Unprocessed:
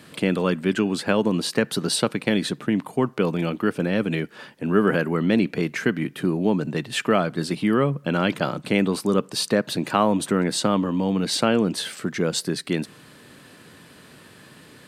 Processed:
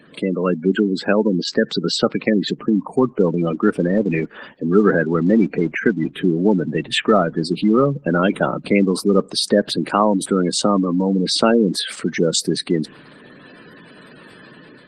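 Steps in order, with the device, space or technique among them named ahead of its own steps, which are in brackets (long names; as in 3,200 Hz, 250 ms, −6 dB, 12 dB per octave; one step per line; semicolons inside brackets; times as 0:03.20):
0:02.49–0:03.40: dynamic equaliser 1,500 Hz, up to −4 dB, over −51 dBFS, Q 6.2
noise-suppressed video call (high-pass filter 160 Hz 12 dB per octave; gate on every frequency bin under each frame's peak −15 dB strong; automatic gain control gain up to 5.5 dB; level +1.5 dB; Opus 20 kbit/s 48,000 Hz)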